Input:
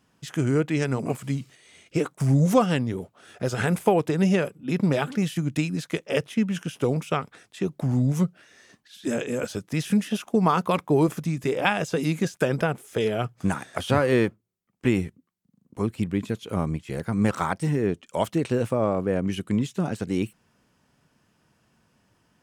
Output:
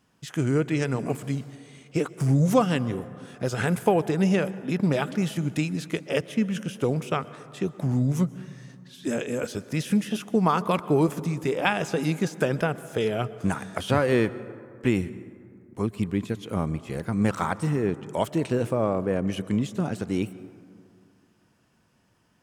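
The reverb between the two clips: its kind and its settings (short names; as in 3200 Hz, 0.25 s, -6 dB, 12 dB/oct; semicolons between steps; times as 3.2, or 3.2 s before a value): plate-style reverb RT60 2.4 s, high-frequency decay 0.35×, pre-delay 0.11 s, DRR 16.5 dB; gain -1 dB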